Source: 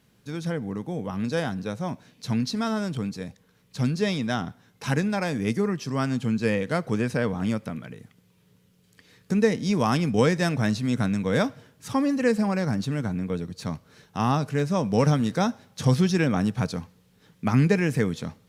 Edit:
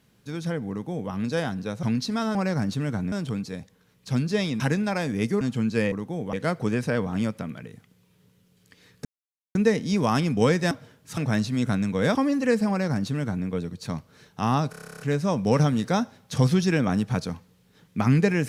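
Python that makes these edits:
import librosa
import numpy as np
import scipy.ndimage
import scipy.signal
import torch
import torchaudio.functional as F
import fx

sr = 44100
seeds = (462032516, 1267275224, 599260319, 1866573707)

y = fx.edit(x, sr, fx.duplicate(start_s=0.7, length_s=0.41, to_s=6.6),
    fx.cut(start_s=1.83, length_s=0.45),
    fx.cut(start_s=4.28, length_s=0.58),
    fx.cut(start_s=5.67, length_s=0.42),
    fx.insert_silence(at_s=9.32, length_s=0.5),
    fx.move(start_s=11.46, length_s=0.46, to_s=10.48),
    fx.duplicate(start_s=12.46, length_s=0.77, to_s=2.8),
    fx.stutter(start_s=14.47, slice_s=0.03, count=11), tone=tone)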